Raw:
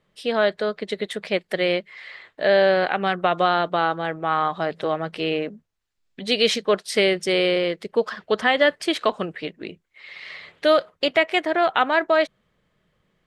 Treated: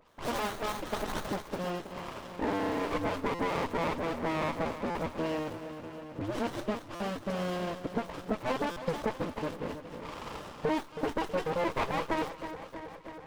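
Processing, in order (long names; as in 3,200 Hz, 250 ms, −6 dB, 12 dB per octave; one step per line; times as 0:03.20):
sub-harmonics by changed cycles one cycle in 2, inverted
noise gate −48 dBFS, range −28 dB
spectral tilt +4 dB per octave, from 0:01.29 −2 dB per octave
all-pass dispersion highs, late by 84 ms, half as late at 2,800 Hz
downward compressor 5 to 1, threshold −27 dBFS, peak gain reduction 15.5 dB
high-pass filter 200 Hz 6 dB per octave
parametric band 1,100 Hz +10 dB 0.22 octaves
notch comb filter 370 Hz
echo with a time of its own for lows and highs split 1,300 Hz, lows 321 ms, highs 220 ms, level −11 dB
upward compression, threshold −34 dBFS
buffer that repeats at 0:03.34/0:04.90/0:06.95/0:08.71, samples 256, times 8
windowed peak hold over 17 samples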